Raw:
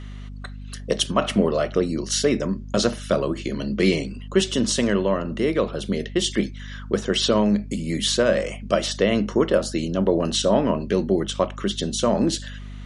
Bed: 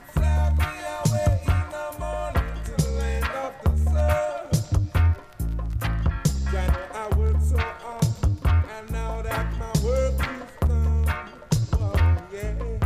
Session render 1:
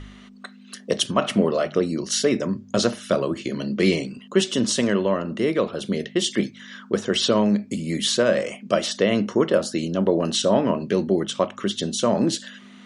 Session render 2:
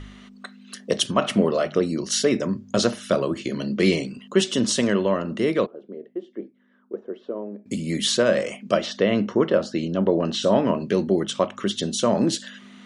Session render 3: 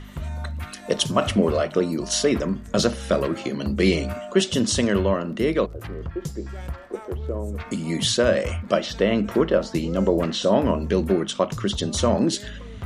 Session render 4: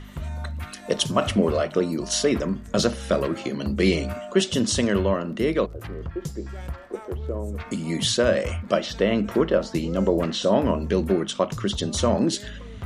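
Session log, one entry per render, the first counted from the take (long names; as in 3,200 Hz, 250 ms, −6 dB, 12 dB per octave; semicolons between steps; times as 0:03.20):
hum removal 50 Hz, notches 3
0:05.66–0:07.66: four-pole ladder band-pass 440 Hz, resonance 35%; 0:08.77–0:10.42: high-frequency loss of the air 130 metres
mix in bed −10 dB
level −1 dB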